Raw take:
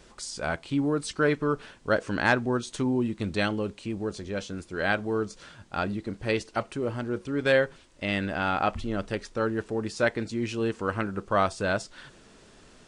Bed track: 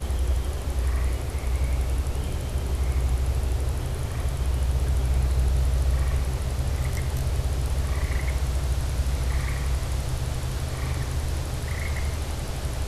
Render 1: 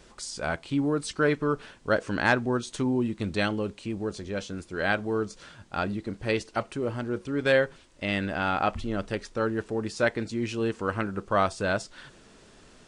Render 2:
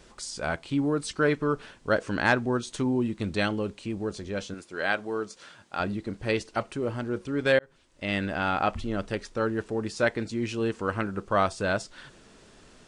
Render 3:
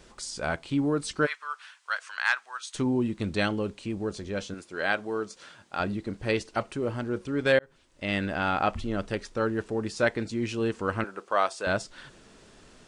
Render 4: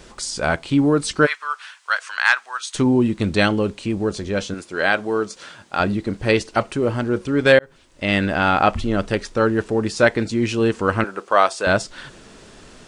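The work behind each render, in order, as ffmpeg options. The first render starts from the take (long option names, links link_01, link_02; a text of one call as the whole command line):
ffmpeg -i in.wav -af anull out.wav
ffmpeg -i in.wav -filter_complex "[0:a]asettb=1/sr,asplit=3[link_01][link_02][link_03];[link_01]atrim=end=4.544[link_04];[link_02]atrim=start=4.54:end=5.8,asetpts=PTS-STARTPTS,afade=type=in:duration=0.004:curve=qsin,afade=type=out:start_time=1.256:duration=0.004:curve=qsin,highpass=frequency=400:poles=1[link_05];[link_03]atrim=start=5.796[link_06];[link_04][link_05]acrossfade=duration=0.004:curve1=hsin:curve2=qsin[link_07];[link_07][link_06]acrossfade=duration=0.004:curve1=qsin:curve2=hsin,asplit=2[link_08][link_09];[link_08]atrim=end=7.59,asetpts=PTS-STARTPTS,afade=type=out:start_time=7.586:duration=0.004:curve=hsin[link_10];[link_09]atrim=start=7.59,asetpts=PTS-STARTPTS,afade=type=in:duration=0.56[link_11];[link_10][link_11]concat=n=2:v=0:a=1" out.wav
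ffmpeg -i in.wav -filter_complex "[0:a]asplit=3[link_01][link_02][link_03];[link_01]afade=type=out:start_time=1.25:duration=0.02[link_04];[link_02]highpass=frequency=1100:width=0.5412,highpass=frequency=1100:width=1.3066,afade=type=in:start_time=1.25:duration=0.02,afade=type=out:start_time=2.74:duration=0.02[link_05];[link_03]afade=type=in:start_time=2.74:duration=0.02[link_06];[link_04][link_05][link_06]amix=inputs=3:normalize=0,asettb=1/sr,asplit=3[link_07][link_08][link_09];[link_07]atrim=end=11.044[link_10];[link_08]atrim=start=11.04:end=11.67,asetpts=PTS-STARTPTS,afade=type=in:duration=0.004:curve=qsin,afade=type=out:start_time=0.626:duration=0.004:curve=qsin,highpass=480[link_11];[link_09]atrim=start=11.666[link_12];[link_10][link_11]acrossfade=duration=0.004:curve1=hsin:curve2=qsin[link_13];[link_13][link_12]acrossfade=duration=0.004:curve1=qsin:curve2=hsin" out.wav
ffmpeg -i in.wav -af "volume=9.5dB,alimiter=limit=-2dB:level=0:latency=1" out.wav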